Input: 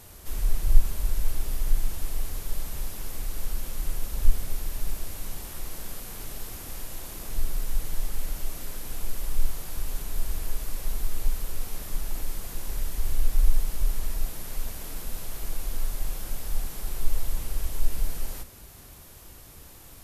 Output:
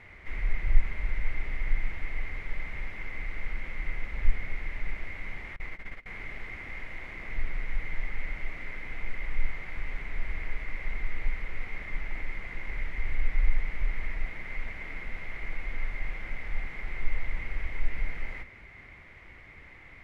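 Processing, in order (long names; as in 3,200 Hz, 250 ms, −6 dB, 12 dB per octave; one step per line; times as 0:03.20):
0:05.56–0:06.06: noise gate −31 dBFS, range −25 dB
low-pass with resonance 2,100 Hz, resonance Q 16
level −4 dB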